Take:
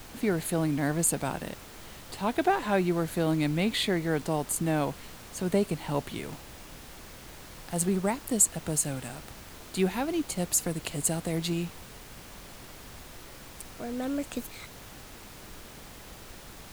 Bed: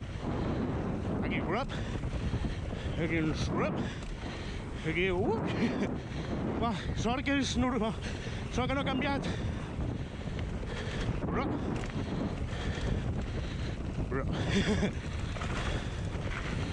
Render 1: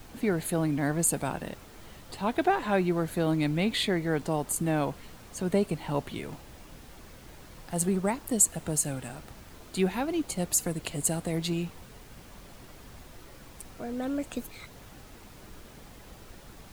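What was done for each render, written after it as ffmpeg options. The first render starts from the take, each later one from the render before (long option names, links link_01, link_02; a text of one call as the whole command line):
ffmpeg -i in.wav -af "afftdn=noise_reduction=6:noise_floor=-47" out.wav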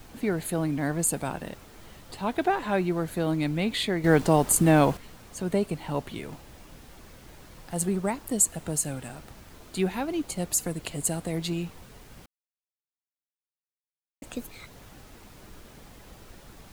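ffmpeg -i in.wav -filter_complex "[0:a]asplit=5[link_01][link_02][link_03][link_04][link_05];[link_01]atrim=end=4.042[link_06];[link_02]atrim=start=4.038:end=4.972,asetpts=PTS-STARTPTS,volume=8.5dB[link_07];[link_03]atrim=start=4.968:end=12.26,asetpts=PTS-STARTPTS,afade=type=out:start_time=7.288:duration=0.004:curve=hsin[link_08];[link_04]atrim=start=12.26:end=14.22,asetpts=PTS-STARTPTS,volume=0[link_09];[link_05]atrim=start=14.22,asetpts=PTS-STARTPTS,afade=type=in:duration=0.004:curve=hsin[link_10];[link_06][link_07]acrossfade=duration=0.004:curve1=hsin:curve2=hsin[link_11];[link_08][link_09][link_10]concat=n=3:v=0:a=1[link_12];[link_11][link_12]acrossfade=duration=0.004:curve1=hsin:curve2=hsin" out.wav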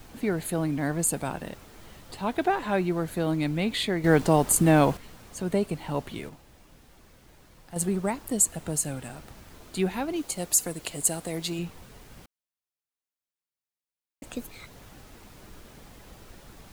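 ffmpeg -i in.wav -filter_complex "[0:a]asettb=1/sr,asplit=3[link_01][link_02][link_03];[link_01]atrim=end=10.164[link_04];[link_02]atrim=start=10.16:end=11.59,asetpts=PTS-STARTPTS,afade=type=in:duration=0.004:curve=qsin,afade=type=out:start_time=1.426:duration=0.004:curve=qsin,bass=frequency=250:gain=-6,treble=frequency=4000:gain=4[link_05];[link_03]atrim=start=11.586[link_06];[link_04][link_05]acrossfade=duration=0.004:curve1=hsin:curve2=qsin[link_07];[link_07][link_06]acrossfade=duration=0.004:curve1=qsin:curve2=hsin,asplit=3[link_08][link_09][link_10];[link_08]atrim=end=6.292[link_11];[link_09]atrim=start=6.288:end=7.762,asetpts=PTS-STARTPTS,volume=-6.5dB[link_12];[link_10]atrim=start=7.758[link_13];[link_11][link_12]acrossfade=duration=0.004:curve1=hsin:curve2=hsin[link_14];[link_14][link_13]acrossfade=duration=0.004:curve1=hsin:curve2=hsin" out.wav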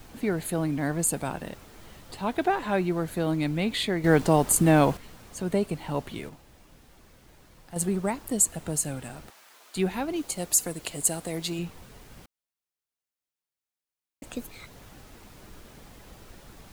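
ffmpeg -i in.wav -filter_complex "[0:a]asettb=1/sr,asplit=3[link_01][link_02][link_03];[link_01]atrim=end=9.304[link_04];[link_02]atrim=start=9.3:end=9.76,asetpts=PTS-STARTPTS,afade=type=in:duration=0.004:curve=qsin,afade=type=out:start_time=0.456:duration=0.004:curve=qsin,highpass=830[link_05];[link_03]atrim=start=9.756[link_06];[link_04][link_05]acrossfade=duration=0.004:curve1=hsin:curve2=qsin[link_07];[link_07][link_06]acrossfade=duration=0.004:curve1=qsin:curve2=hsin" out.wav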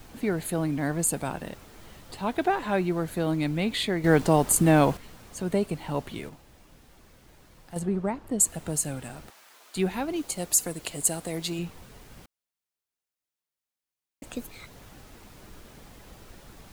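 ffmpeg -i in.wav -filter_complex "[0:a]asettb=1/sr,asplit=3[link_01][link_02][link_03];[link_01]atrim=end=7.794[link_04];[link_02]atrim=start=7.79:end=8.4,asetpts=PTS-STARTPTS,afade=type=in:duration=0.004:curve=qsin,afade=type=out:start_time=0.606:duration=0.004:curve=qsin,lowpass=frequency=1400:poles=1[link_05];[link_03]atrim=start=8.396[link_06];[link_04][link_05]acrossfade=duration=0.004:curve1=hsin:curve2=qsin[link_07];[link_07][link_06]acrossfade=duration=0.004:curve1=qsin:curve2=hsin" out.wav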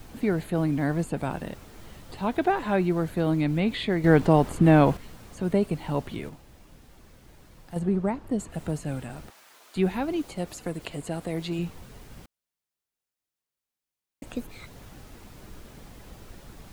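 ffmpeg -i in.wav -filter_complex "[0:a]acrossover=split=3600[link_01][link_02];[link_02]acompressor=threshold=-49dB:ratio=4:attack=1:release=60[link_03];[link_01][link_03]amix=inputs=2:normalize=0,lowshelf=frequency=350:gain=4" out.wav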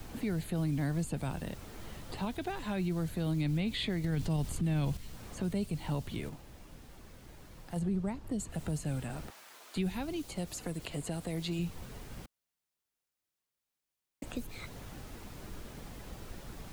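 ffmpeg -i in.wav -filter_complex "[0:a]acrossover=split=160|3000[link_01][link_02][link_03];[link_02]acompressor=threshold=-38dB:ratio=4[link_04];[link_01][link_04][link_03]amix=inputs=3:normalize=0,alimiter=level_in=1dB:limit=-24dB:level=0:latency=1:release=27,volume=-1dB" out.wav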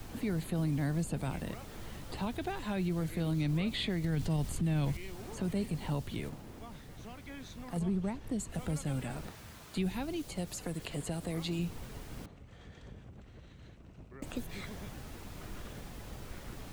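ffmpeg -i in.wav -i bed.wav -filter_complex "[1:a]volume=-18dB[link_01];[0:a][link_01]amix=inputs=2:normalize=0" out.wav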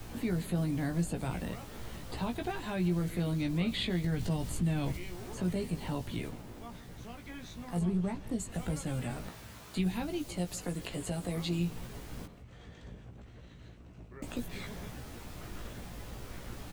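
ffmpeg -i in.wav -filter_complex "[0:a]asplit=2[link_01][link_02];[link_02]adelay=17,volume=-5dB[link_03];[link_01][link_03]amix=inputs=2:normalize=0,aecho=1:1:161:0.0944" out.wav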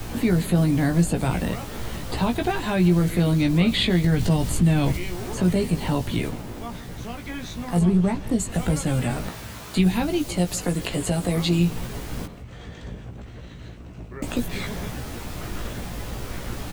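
ffmpeg -i in.wav -af "volume=12dB" out.wav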